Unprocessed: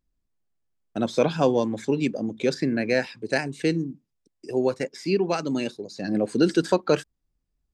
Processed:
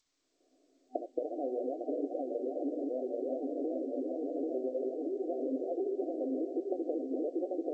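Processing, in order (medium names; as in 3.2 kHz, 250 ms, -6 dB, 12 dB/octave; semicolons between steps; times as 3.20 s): backward echo that repeats 394 ms, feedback 71%, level -1.5 dB; recorder AGC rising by 72 dB/s; flange 1.8 Hz, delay 3.5 ms, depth 9.6 ms, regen +58%; 1.84–2.56 s: distance through air 450 m; compression 8:1, threshold -28 dBFS, peak gain reduction 14.5 dB; FFT band-pass 250–760 Hz; 4.69–5.34 s: bass shelf 330 Hz -2.5 dB; echo that smears into a reverb 550 ms, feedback 49%, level -13.5 dB; trim -2 dB; G.722 64 kbps 16 kHz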